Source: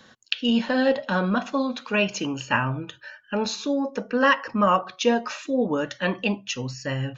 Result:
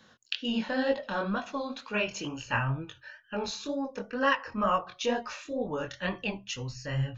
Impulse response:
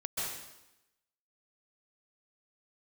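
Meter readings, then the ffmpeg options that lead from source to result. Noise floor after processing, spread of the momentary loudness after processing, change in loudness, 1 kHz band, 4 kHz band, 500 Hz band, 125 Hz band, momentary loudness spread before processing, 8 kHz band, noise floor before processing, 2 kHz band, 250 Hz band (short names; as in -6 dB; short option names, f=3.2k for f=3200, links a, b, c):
-60 dBFS, 8 LU, -7.5 dB, -6.5 dB, -6.5 dB, -7.5 dB, -3.5 dB, 9 LU, n/a, -54 dBFS, -6.5 dB, -9.0 dB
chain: -af "flanger=delay=18:depth=7.2:speed=2.1,asubboost=boost=7.5:cutoff=86,volume=-3.5dB"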